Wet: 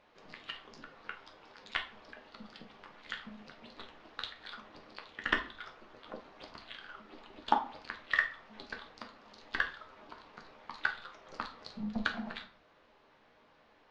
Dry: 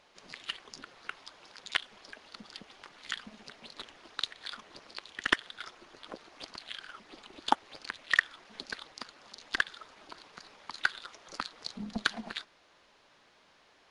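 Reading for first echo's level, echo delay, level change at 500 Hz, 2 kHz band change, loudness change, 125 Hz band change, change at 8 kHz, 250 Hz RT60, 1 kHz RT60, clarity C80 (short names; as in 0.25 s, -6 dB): none, none, -0.5 dB, -2.5 dB, -2.5 dB, n/a, under -10 dB, 0.70 s, 0.50 s, 16.0 dB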